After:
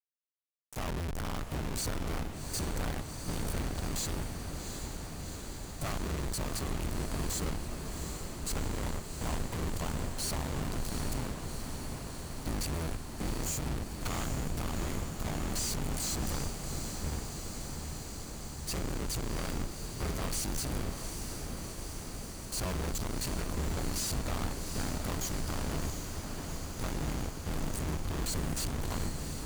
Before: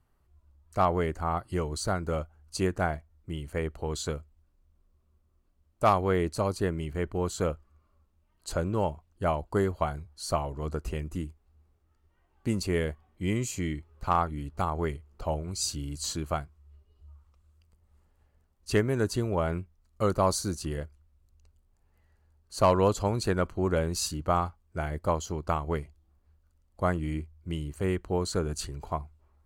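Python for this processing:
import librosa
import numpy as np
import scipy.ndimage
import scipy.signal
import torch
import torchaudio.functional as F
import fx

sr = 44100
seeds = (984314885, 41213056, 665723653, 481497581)

y = fx.octave_divider(x, sr, octaves=2, level_db=2.0)
y = fx.bass_treble(y, sr, bass_db=9, treble_db=11)
y = fx.fuzz(y, sr, gain_db=43.0, gate_db=-37.0)
y = fx.tube_stage(y, sr, drive_db=34.0, bias=0.6)
y = fx.echo_diffused(y, sr, ms=748, feedback_pct=79, wet_db=-6.5)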